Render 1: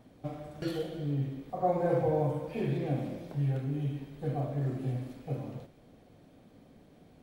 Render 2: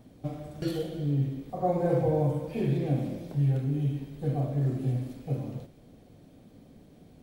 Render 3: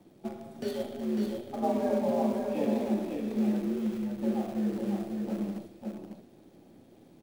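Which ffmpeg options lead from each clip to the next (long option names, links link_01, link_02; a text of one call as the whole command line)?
ffmpeg -i in.wav -af "equalizer=frequency=1300:width=0.4:gain=-7,volume=5.5dB" out.wav
ffmpeg -i in.wav -filter_complex "[0:a]afreqshift=77,asplit=2[link_01][link_02];[link_02]acrusher=bits=6:dc=4:mix=0:aa=0.000001,volume=-11dB[link_03];[link_01][link_03]amix=inputs=2:normalize=0,aecho=1:1:550:0.596,volume=-5dB" out.wav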